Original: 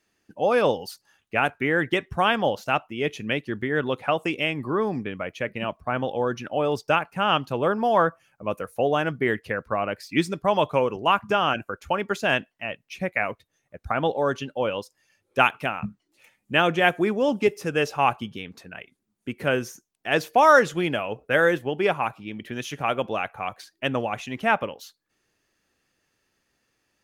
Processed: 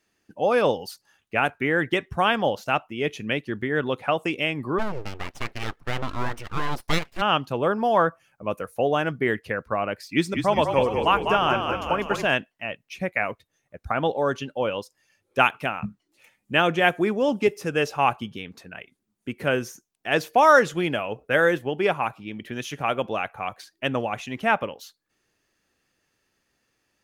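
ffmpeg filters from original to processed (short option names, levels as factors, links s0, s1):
-filter_complex "[0:a]asplit=3[s0][s1][s2];[s0]afade=t=out:st=4.78:d=0.02[s3];[s1]aeval=exprs='abs(val(0))':c=same,afade=t=in:st=4.78:d=0.02,afade=t=out:st=7.2:d=0.02[s4];[s2]afade=t=in:st=7.2:d=0.02[s5];[s3][s4][s5]amix=inputs=3:normalize=0,asettb=1/sr,asplit=3[s6][s7][s8];[s6]atrim=end=10.084[s9];[s7]atrim=start=10.08:end=12.29,asetpts=PTS-STARTPTS,afade=t=in:d=0.004:c=qsin,afade=t=out:st=2.206:d=0.004:c=qsin,asplit=9[s10][s11][s12][s13][s14][s15][s16][s17][s18];[s11]adelay=199,afreqshift=-41,volume=0.501[s19];[s12]adelay=398,afreqshift=-82,volume=0.302[s20];[s13]adelay=597,afreqshift=-123,volume=0.18[s21];[s14]adelay=796,afreqshift=-164,volume=0.108[s22];[s15]adelay=995,afreqshift=-205,volume=0.0653[s23];[s16]adelay=1194,afreqshift=-246,volume=0.0389[s24];[s17]adelay=1393,afreqshift=-287,volume=0.0234[s25];[s18]adelay=1592,afreqshift=-328,volume=0.014[s26];[s10][s19][s20][s21][s22][s23][s24][s25][s26]amix=inputs=9:normalize=0,atrim=end_sample=97461[s27];[s8]atrim=start=12.286[s28];[s9][s27]acrossfade=d=0.004:c1=hsin:c2=qsin[s29];[s29][s28]acrossfade=d=0.004:c1=qsin:c2=hsin"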